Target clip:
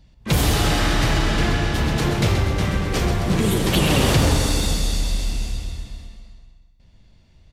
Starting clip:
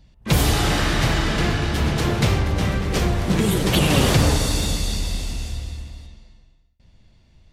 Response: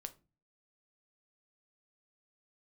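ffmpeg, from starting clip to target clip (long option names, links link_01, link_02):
-filter_complex "[0:a]asoftclip=type=tanh:threshold=-7.5dB,asplit=2[link_01][link_02];[link_02]aecho=0:1:130|260|390|520|650:0.398|0.171|0.0736|0.0317|0.0136[link_03];[link_01][link_03]amix=inputs=2:normalize=0"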